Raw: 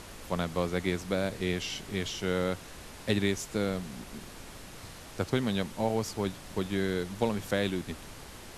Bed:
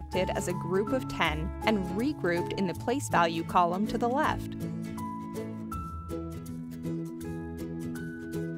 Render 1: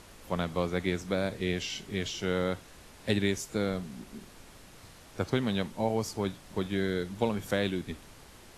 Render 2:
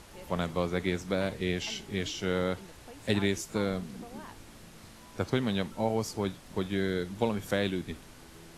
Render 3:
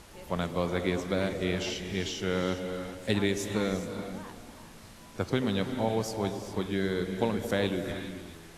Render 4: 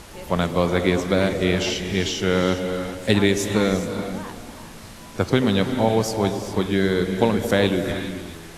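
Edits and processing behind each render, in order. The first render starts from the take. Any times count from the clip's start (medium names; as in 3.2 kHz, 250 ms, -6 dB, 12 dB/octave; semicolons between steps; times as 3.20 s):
noise print and reduce 6 dB
add bed -20.5 dB
on a send: repeats whose band climbs or falls 110 ms, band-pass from 320 Hz, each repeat 0.7 oct, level -6.5 dB; on the sum: gated-style reverb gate 440 ms rising, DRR 8 dB
trim +9.5 dB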